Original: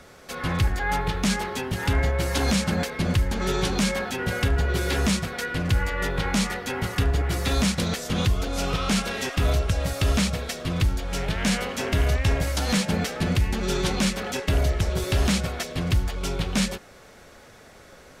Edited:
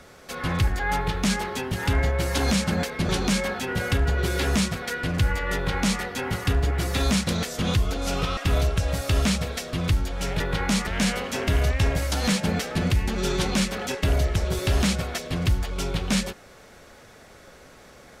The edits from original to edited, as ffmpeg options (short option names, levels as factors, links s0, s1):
-filter_complex "[0:a]asplit=5[s0][s1][s2][s3][s4];[s0]atrim=end=3.092[s5];[s1]atrim=start=3.598:end=8.882[s6];[s2]atrim=start=9.288:end=11.322[s7];[s3]atrim=start=6.048:end=6.522[s8];[s4]atrim=start=11.318[s9];[s5][s6]acrossfade=d=0.004:c1=hsin:c2=hsin[s10];[s10][s7]acrossfade=d=0.004:c1=hsin:c2=hsin[s11];[s11][s8]acrossfade=d=0.004:c1=hsin:c2=hsin[s12];[s12][s9]acrossfade=d=0.004:c1=hsin:c2=hsin"